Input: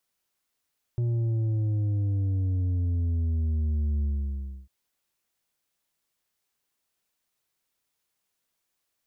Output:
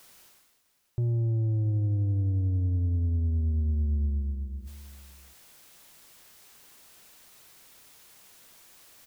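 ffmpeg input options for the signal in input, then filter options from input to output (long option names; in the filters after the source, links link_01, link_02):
-f lavfi -i "aevalsrc='0.0631*clip((3.7-t)/0.65,0,1)*tanh(2*sin(2*PI*120*3.7/log(65/120)*(exp(log(65/120)*t/3.7)-1)))/tanh(2)':duration=3.7:sample_rate=44100"
-af "areverse,acompressor=mode=upward:threshold=-34dB:ratio=2.5,areverse,aecho=1:1:656:0.133"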